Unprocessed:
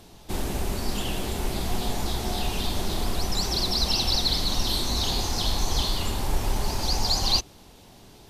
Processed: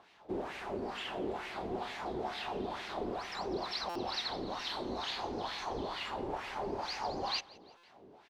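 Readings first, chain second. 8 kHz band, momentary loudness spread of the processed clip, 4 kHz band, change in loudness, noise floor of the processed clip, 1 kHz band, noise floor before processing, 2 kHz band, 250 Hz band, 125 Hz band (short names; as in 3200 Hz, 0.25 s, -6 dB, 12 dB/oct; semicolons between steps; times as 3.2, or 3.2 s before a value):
-22.5 dB, 4 LU, -15.0 dB, -12.0 dB, -61 dBFS, -4.5 dB, -50 dBFS, -5.0 dB, -9.0 dB, -20.0 dB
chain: high shelf 6800 Hz -9 dB; wah 2.2 Hz 370–2200 Hz, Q 2; feedback echo 0.171 s, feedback 51%, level -23 dB; stuck buffer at 3.89/7.77, samples 256, times 10; gain +1.5 dB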